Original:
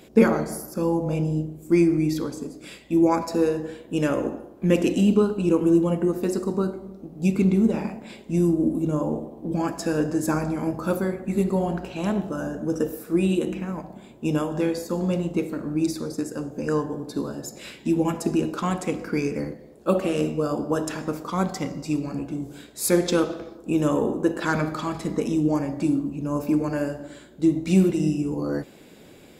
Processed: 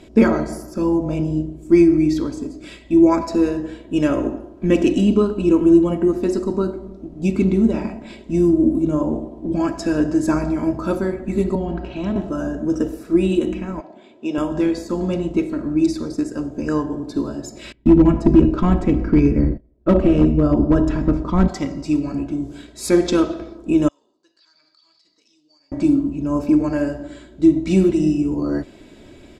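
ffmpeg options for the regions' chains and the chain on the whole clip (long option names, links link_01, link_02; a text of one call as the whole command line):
ffmpeg -i in.wav -filter_complex "[0:a]asettb=1/sr,asplit=3[link_01][link_02][link_03];[link_01]atrim=end=11.554[link_04];[link_02]atrim=start=11.55:end=12.16,asetpts=PTS-STARTPTS,afade=type=in:duration=0.004:curve=qsin,afade=type=out:start_time=0.606:duration=0.004:curve=qsin,acrossover=split=340|3000[link_05][link_06][link_07];[link_06]acompressor=threshold=-35dB:ratio=2.5:attack=3.2:release=140:knee=2.83:detection=peak[link_08];[link_05][link_08][link_07]amix=inputs=3:normalize=0,lowpass=3900[link_09];[link_03]atrim=start=12.156[link_10];[link_04][link_09]acrossfade=duration=0.004:curve1=hsin:curve2=qsin[link_11];[link_11][link_10]acrossfade=duration=0.004:curve1=qsin:curve2=hsin,asettb=1/sr,asplit=3[link_12][link_13][link_14];[link_12]atrim=end=13.804[link_15];[link_13]atrim=start=13.8:end=14.38,asetpts=PTS-STARTPTS,afade=type=in:duration=0.004:curve=qsin,afade=type=out:start_time=0.576:duration=0.004:curve=qsin,highpass=370,lowpass=5300,equalizer=frequency=1100:width_type=o:width=0.87:gain=-3.5[link_16];[link_14]atrim=start=14.376[link_17];[link_15][link_16]acrossfade=duration=0.004:curve1=hsin:curve2=qsin[link_18];[link_18][link_17]acrossfade=duration=0.004:curve1=qsin:curve2=hsin,asettb=1/sr,asplit=3[link_19][link_20][link_21];[link_19]atrim=end=17.724[link_22];[link_20]atrim=start=17.72:end=21.48,asetpts=PTS-STARTPTS,afade=type=in:duration=0.004:curve=qsin,afade=type=out:start_time=3.756:duration=0.004:curve=qsin,aemphasis=mode=reproduction:type=riaa,agate=range=-24dB:threshold=-35dB:ratio=16:release=100:detection=peak,asoftclip=type=hard:threshold=-11dB[link_23];[link_21]atrim=start=21.476[link_24];[link_22][link_23]acrossfade=duration=0.004:curve1=hsin:curve2=qsin[link_25];[link_25][link_24]acrossfade=duration=0.004:curve1=qsin:curve2=hsin,asettb=1/sr,asplit=3[link_26][link_27][link_28];[link_26]atrim=end=23.884[link_29];[link_27]atrim=start=23.88:end=25.72,asetpts=PTS-STARTPTS,afade=type=in:duration=0.004:curve=qsin,afade=type=out:start_time=1.836:duration=0.004:curve=qsin,bandpass=frequency=4600:width_type=q:width=14,acompressor=threshold=-56dB:ratio=5:attack=3.2:release=140:knee=1:detection=peak[link_30];[link_28]atrim=start=25.716[link_31];[link_29][link_30]acrossfade=duration=0.004:curve1=hsin:curve2=qsin[link_32];[link_32][link_31]acrossfade=duration=0.004:curve1=qsin:curve2=hsin,lowpass=7100,lowshelf=frequency=140:gain=11.5,aecho=1:1:3.1:0.51,volume=1.5dB" out.wav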